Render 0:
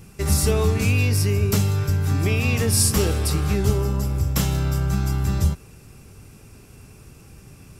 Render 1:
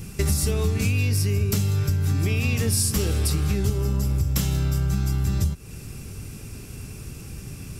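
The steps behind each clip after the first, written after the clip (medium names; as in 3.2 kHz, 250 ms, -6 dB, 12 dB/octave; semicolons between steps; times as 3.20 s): peaking EQ 850 Hz -7 dB 2.2 oct; compression 6:1, threshold -29 dBFS, peak gain reduction 14.5 dB; trim +9 dB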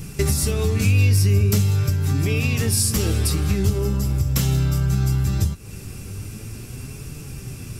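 flange 0.42 Hz, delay 6.7 ms, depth 4.1 ms, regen +58%; trim +7 dB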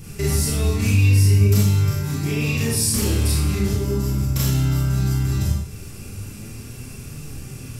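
Schroeder reverb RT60 0.6 s, combs from 27 ms, DRR -5 dB; trim -6 dB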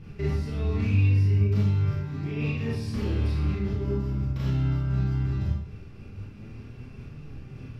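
distance through air 310 m; random flutter of the level, depth 50%; trim -3.5 dB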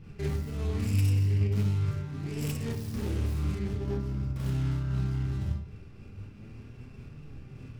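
tracing distortion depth 0.5 ms; trim -4 dB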